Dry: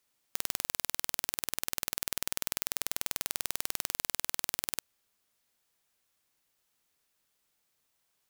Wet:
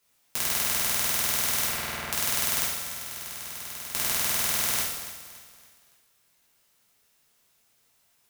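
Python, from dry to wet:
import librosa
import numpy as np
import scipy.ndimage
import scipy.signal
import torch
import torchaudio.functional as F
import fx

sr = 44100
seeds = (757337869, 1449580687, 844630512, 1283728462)

p1 = fx.lowpass(x, sr, hz=fx.line((1.67, 3600.0), (2.08, 2100.0)), slope=12, at=(1.67, 2.08), fade=0.02)
p2 = fx.over_compress(p1, sr, threshold_db=-46.0, ratio=-1.0, at=(2.62, 3.93))
p3 = p2 + fx.echo_feedback(p2, sr, ms=283, feedback_pct=40, wet_db=-12.5, dry=0)
p4 = fx.rev_gated(p3, sr, seeds[0], gate_ms=290, shape='falling', drr_db=-7.0)
y = p4 * librosa.db_to_amplitude(2.0)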